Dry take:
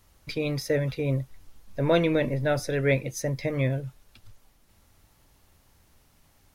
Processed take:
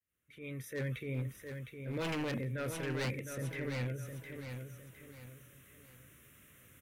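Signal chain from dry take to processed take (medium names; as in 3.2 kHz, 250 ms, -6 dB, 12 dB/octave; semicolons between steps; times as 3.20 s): fade-in on the opening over 0.80 s; high-pass 100 Hz 12 dB/octave; bass shelf 500 Hz -4 dB; band-stop 4.3 kHz, Q 17; reverse; upward compressor, threshold -42 dBFS; reverse; transient shaper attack -8 dB, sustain +4 dB; static phaser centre 2.1 kHz, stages 4; wavefolder -26 dBFS; on a send: feedback delay 681 ms, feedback 36%, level -7 dB; on the sum: speed mistake 25 fps video run at 24 fps; trim -5 dB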